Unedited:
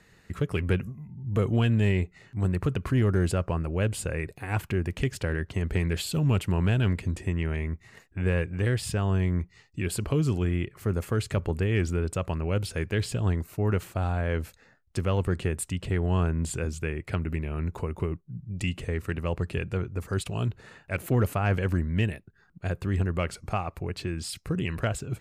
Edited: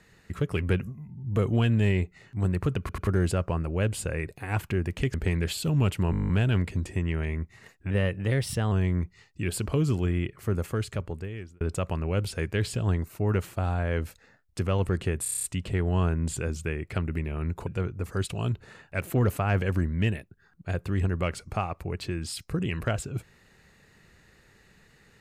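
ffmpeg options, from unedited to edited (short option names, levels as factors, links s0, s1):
-filter_complex "[0:a]asplit=25[s0][s1][s2][s3][s4][s5][s6][s7][s8][s9][s10][s11][s12][s13][s14][s15][s16][s17][s18][s19][s20][s21][s22][s23][s24];[s0]atrim=end=2.892[s25];[s1]atrim=start=2.798:end=2.892[s26];[s2]atrim=start=2.798:end=2.892[s27];[s3]atrim=start=3.068:end=5.142[s28];[s4]atrim=start=5.628:end=6.622[s29];[s5]atrim=start=6.598:end=6.622[s30];[s6]atrim=start=6.598:end=6.622[s31];[s7]atrim=start=6.598:end=6.622[s32];[s8]atrim=start=6.598:end=6.622[s33];[s9]atrim=start=6.598:end=6.622[s34];[s10]atrim=start=6.598:end=6.622[s35];[s11]atrim=start=6.598:end=6.622[s36];[s12]atrim=start=6.598:end=6.622[s37];[s13]atrim=start=6.598:end=8.224[s38];[s14]atrim=start=8.22:end=9.1,asetpts=PTS-STARTPTS,asetrate=48069,aresample=44100[s39];[s15]atrim=start=9.096:end=11.99,asetpts=PTS-STARTPTS,afade=t=out:st=1.844:d=1.05[s40];[s16]atrim=start=11.99:end=15.642,asetpts=PTS-STARTPTS,afade=t=in:d=0.004:c=hsin[s41];[s17]atrim=start=15.608:end=15.642[s42];[s18]atrim=start=15.608:end=15.642[s43];[s19]atrim=start=15.608:end=15.642[s44];[s20]atrim=start=15.608:end=15.642[s45];[s21]atrim=start=15.608:end=15.642[s46];[s22]atrim=start=15.608:end=15.642[s47];[s23]atrim=start=15.608:end=17.842[s48];[s24]atrim=start=19.628[s49];[s25][s26]acrossfade=d=0.004:c1=hsin:c2=hsin[s50];[s50][s27]acrossfade=d=0.004:c1=hsin:c2=hsin[s51];[s51][s28]acrossfade=d=0.004:c1=hsin:c2=hsin[s52];[s52][s29]acrossfade=d=0.004:c1=hsin:c2=hsin[s53];[s53][s30]acrossfade=d=0.004:c1=hsin:c2=hsin[s54];[s54][s31]acrossfade=d=0.004:c1=hsin:c2=hsin[s55];[s55][s32]acrossfade=d=0.004:c1=hsin:c2=hsin[s56];[s56][s33]acrossfade=d=0.004:c1=hsin:c2=hsin[s57];[s57][s34]acrossfade=d=0.004:c1=hsin:c2=hsin[s58];[s58][s35]acrossfade=d=0.004:c1=hsin:c2=hsin[s59];[s59][s36]acrossfade=d=0.004:c1=hsin:c2=hsin[s60];[s60][s37]acrossfade=d=0.004:c1=hsin:c2=hsin[s61];[s61][s38]acrossfade=d=0.004:c1=hsin:c2=hsin[s62];[s62][s39]acrossfade=d=0.004:c1=hsin:c2=hsin[s63];[s40][s41]concat=n=2:v=0:a=1[s64];[s63][s64]acrossfade=d=0.004:c1=hsin:c2=hsin[s65];[s65][s42]acrossfade=d=0.004:c1=hsin:c2=hsin[s66];[s66][s43]acrossfade=d=0.004:c1=hsin:c2=hsin[s67];[s67][s44]acrossfade=d=0.004:c1=hsin:c2=hsin[s68];[s68][s45]acrossfade=d=0.004:c1=hsin:c2=hsin[s69];[s69][s46]acrossfade=d=0.004:c1=hsin:c2=hsin[s70];[s70][s47]acrossfade=d=0.004:c1=hsin:c2=hsin[s71];[s71][s48]acrossfade=d=0.004:c1=hsin:c2=hsin[s72];[s72][s49]acrossfade=d=0.004:c1=hsin:c2=hsin"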